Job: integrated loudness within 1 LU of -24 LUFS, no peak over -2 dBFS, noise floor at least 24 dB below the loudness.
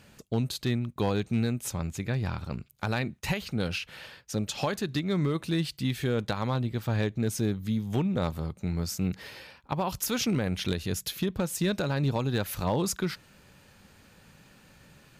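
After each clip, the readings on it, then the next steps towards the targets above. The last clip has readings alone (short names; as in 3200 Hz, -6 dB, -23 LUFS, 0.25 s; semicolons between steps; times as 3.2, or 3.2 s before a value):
clipped 0.5%; flat tops at -19.5 dBFS; loudness -30.5 LUFS; peak -19.5 dBFS; loudness target -24.0 LUFS
-> clip repair -19.5 dBFS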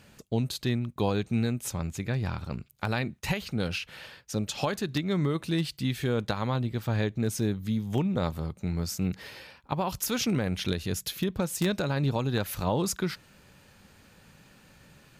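clipped 0.0%; loudness -30.0 LUFS; peak -10.5 dBFS; loudness target -24.0 LUFS
-> gain +6 dB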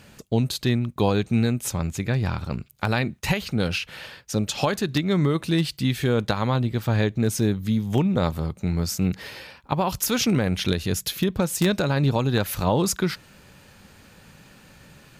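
loudness -24.0 LUFS; peak -4.5 dBFS; noise floor -52 dBFS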